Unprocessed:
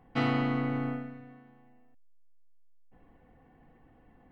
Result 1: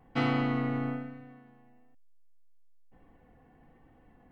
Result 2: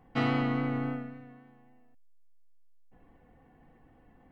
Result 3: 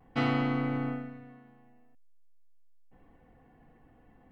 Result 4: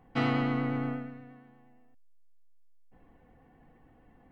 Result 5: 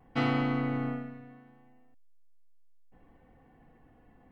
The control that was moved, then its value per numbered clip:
vibrato, rate: 1.1 Hz, 3.6 Hz, 0.47 Hz, 8.5 Hz, 0.7 Hz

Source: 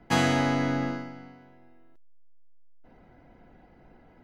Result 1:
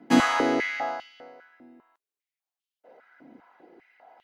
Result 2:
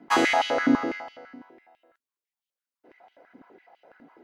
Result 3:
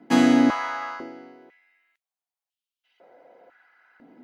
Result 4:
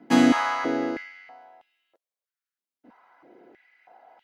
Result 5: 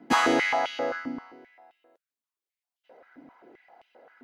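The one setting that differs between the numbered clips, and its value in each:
step-sequenced high-pass, rate: 5 Hz, 12 Hz, 2 Hz, 3.1 Hz, 7.6 Hz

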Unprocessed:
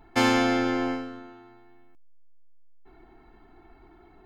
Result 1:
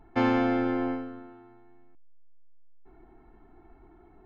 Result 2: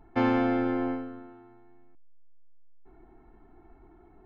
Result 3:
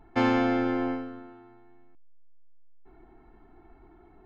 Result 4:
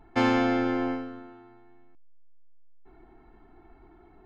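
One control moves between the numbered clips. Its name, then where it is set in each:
tape spacing loss, at 10 kHz: 37 dB, 45 dB, 28 dB, 20 dB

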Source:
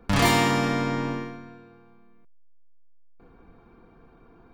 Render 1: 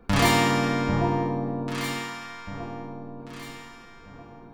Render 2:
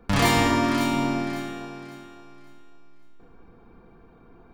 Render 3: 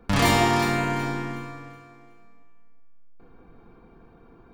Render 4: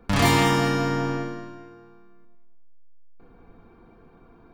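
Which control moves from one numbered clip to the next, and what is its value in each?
echo whose repeats swap between lows and highs, time: 793 ms, 277 ms, 185 ms, 100 ms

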